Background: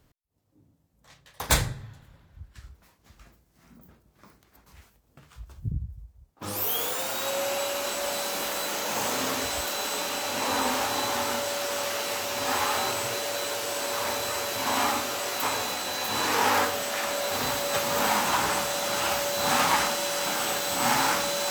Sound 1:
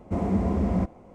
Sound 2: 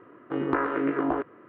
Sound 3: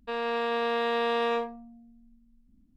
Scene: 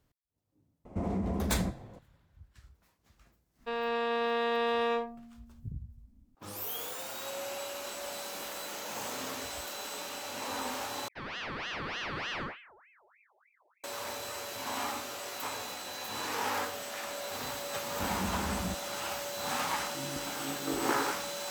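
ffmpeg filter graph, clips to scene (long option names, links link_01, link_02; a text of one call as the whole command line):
ffmpeg -i bed.wav -i cue0.wav -i cue1.wav -i cue2.wav -filter_complex "[1:a]asplit=2[link_01][link_02];[3:a]asplit=2[link_03][link_04];[0:a]volume=-10dB[link_05];[link_01]acompressor=threshold=-26dB:ratio=6:attack=3.2:release=140:knee=1:detection=peak[link_06];[link_04]aeval=exprs='val(0)*sin(2*PI*1500*n/s+1500*0.6/3.3*sin(2*PI*3.3*n/s))':channel_layout=same[link_07];[2:a]acrossover=split=240[link_08][link_09];[link_09]adelay=730[link_10];[link_08][link_10]amix=inputs=2:normalize=0[link_11];[link_05]asplit=2[link_12][link_13];[link_12]atrim=end=11.084[link_14];[link_07]atrim=end=2.76,asetpts=PTS-STARTPTS,volume=-7dB[link_15];[link_13]atrim=start=13.836[link_16];[link_06]atrim=end=1.14,asetpts=PTS-STARTPTS,volume=-2dB,afade=type=in:duration=0.004:curve=hsin,afade=type=out:start_time=1.136:duration=0.004:curve=hsin,adelay=850[link_17];[link_03]atrim=end=2.76,asetpts=PTS-STARTPTS,volume=-2.5dB,afade=type=in:duration=0.004:curve=hsin,afade=type=out:start_time=2.756:duration=0.004:curve=hsin,adelay=3590[link_18];[link_02]atrim=end=1.14,asetpts=PTS-STARTPTS,volume=-12dB,afade=type=in:duration=0.004:curve=hsin,afade=type=out:start_time=1.136:duration=0.004:curve=hsin,adelay=17890[link_19];[link_11]atrim=end=1.48,asetpts=PTS-STARTPTS,volume=-4.5dB,afade=type=in:duration=0.004:curve=hsin,afade=type=out:start_time=1.476:duration=0.004:curve=hsin,adelay=19630[link_20];[link_14][link_15]acrossfade=duration=0.004:curve1=hsin:curve2=hsin[link_21];[link_21][link_16]acrossfade=duration=0.004:curve1=hsin:curve2=hsin[link_22];[link_22][link_17][link_18][link_19][link_20]amix=inputs=5:normalize=0" out.wav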